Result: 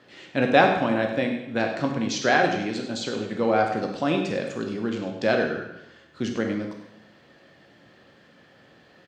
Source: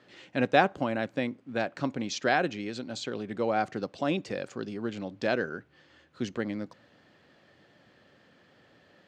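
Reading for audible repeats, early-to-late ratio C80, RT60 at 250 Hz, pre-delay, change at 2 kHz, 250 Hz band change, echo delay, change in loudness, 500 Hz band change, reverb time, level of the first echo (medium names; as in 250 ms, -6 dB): 1, 7.5 dB, 0.90 s, 7 ms, +6.0 dB, +6.5 dB, 100 ms, +6.0 dB, +6.5 dB, 0.90 s, -13.0 dB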